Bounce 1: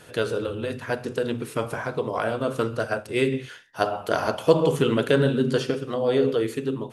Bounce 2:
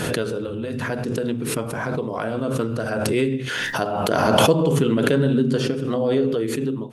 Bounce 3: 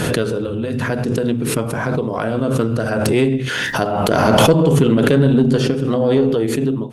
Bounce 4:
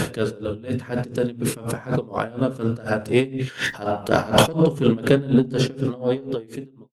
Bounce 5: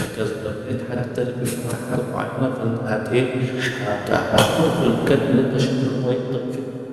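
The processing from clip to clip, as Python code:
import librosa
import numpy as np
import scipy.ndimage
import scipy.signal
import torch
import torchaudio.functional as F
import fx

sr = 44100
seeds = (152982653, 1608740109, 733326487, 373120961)

y1 = fx.peak_eq(x, sr, hz=200.0, db=8.5, octaves=1.7)
y1 = fx.pre_swell(y1, sr, db_per_s=20.0)
y1 = y1 * librosa.db_to_amplitude(-4.0)
y2 = fx.low_shelf(y1, sr, hz=250.0, db=4.0)
y2 = fx.tube_stage(y2, sr, drive_db=8.0, bias=0.3)
y2 = y2 * librosa.db_to_amplitude(5.0)
y3 = fx.fade_out_tail(y2, sr, length_s=1.18)
y3 = y3 * 10.0 ** (-20 * (0.5 - 0.5 * np.cos(2.0 * np.pi * 4.1 * np.arange(len(y3)) / sr)) / 20.0)
y4 = fx.rev_plate(y3, sr, seeds[0], rt60_s=3.9, hf_ratio=0.55, predelay_ms=0, drr_db=1.5)
y4 = y4 * librosa.db_to_amplitude(-1.0)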